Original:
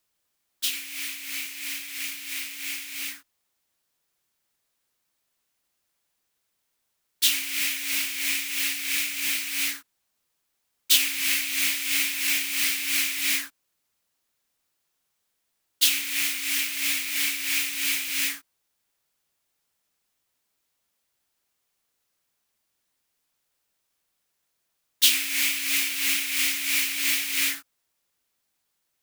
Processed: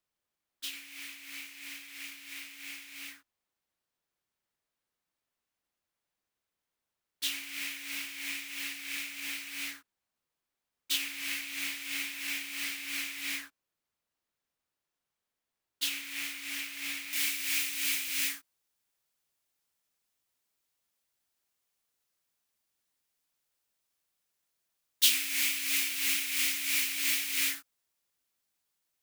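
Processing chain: treble shelf 3.6 kHz -8.5 dB, from 17.13 s +2 dB; trim -6.5 dB

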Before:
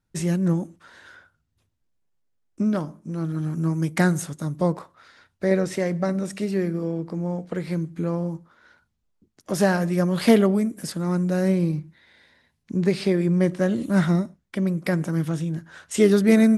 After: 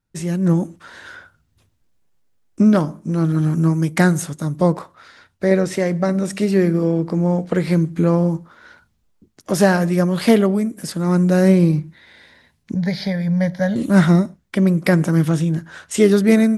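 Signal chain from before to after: level rider gain up to 11.5 dB; 12.74–13.76 s: static phaser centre 1.8 kHz, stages 8; trim -1 dB

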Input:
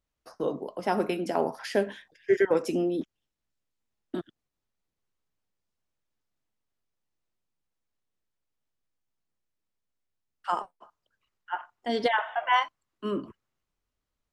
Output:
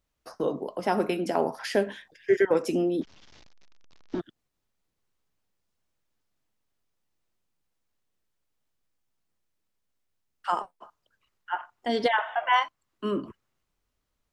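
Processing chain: 3.02–4.20 s: one-bit delta coder 32 kbps, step -51 dBFS; in parallel at -3 dB: compression, threshold -37 dBFS, peak gain reduction 18 dB

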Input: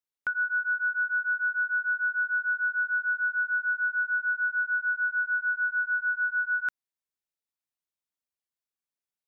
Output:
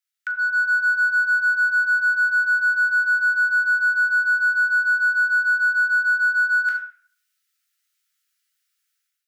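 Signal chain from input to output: steep high-pass 1.3 kHz 96 dB/octave; simulated room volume 58 m³, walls mixed, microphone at 0.75 m; level rider gain up to 11 dB; in parallel at -9 dB: overload inside the chain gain 19.5 dB; on the sum: compression 1.5:1, threshold -40 dBFS, peak gain reduction 11 dB; trim +2.5 dB

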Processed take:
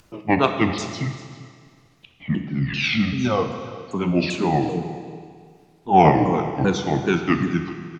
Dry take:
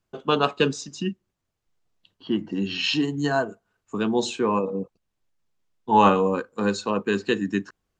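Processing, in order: sawtooth pitch modulation -8.5 st, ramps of 391 ms; upward compressor, threshold -42 dBFS; Schroeder reverb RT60 2 s, combs from 25 ms, DRR 6.5 dB; Chebyshev shaper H 3 -31 dB, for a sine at -5 dBFS; on a send: delay 393 ms -18.5 dB; on the sum: trim +4 dB

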